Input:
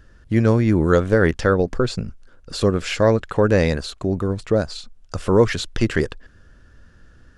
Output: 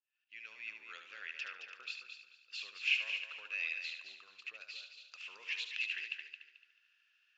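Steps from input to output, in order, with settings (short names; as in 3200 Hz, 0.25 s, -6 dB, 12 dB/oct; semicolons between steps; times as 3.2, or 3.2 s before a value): opening faded in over 0.75 s; compressor 2:1, threshold -19 dBFS, peak gain reduction 6 dB; ladder band-pass 2700 Hz, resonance 85%; multi-head echo 73 ms, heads first and third, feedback 42%, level -8 dB; gain -2.5 dB; Vorbis 96 kbps 16000 Hz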